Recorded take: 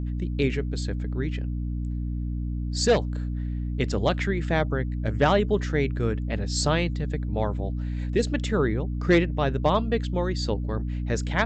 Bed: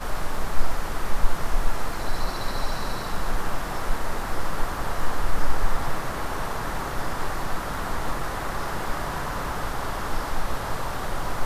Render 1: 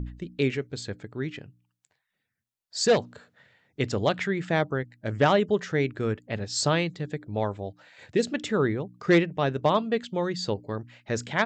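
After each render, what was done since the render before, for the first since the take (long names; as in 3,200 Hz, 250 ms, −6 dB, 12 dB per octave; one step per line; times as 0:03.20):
hum removal 60 Hz, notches 5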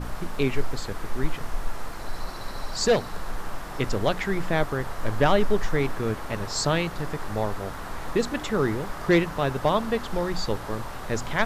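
mix in bed −6.5 dB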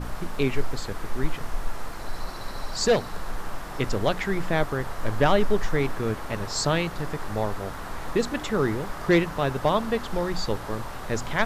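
no processing that can be heard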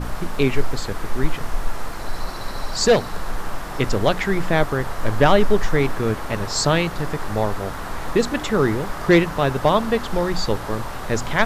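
level +5.5 dB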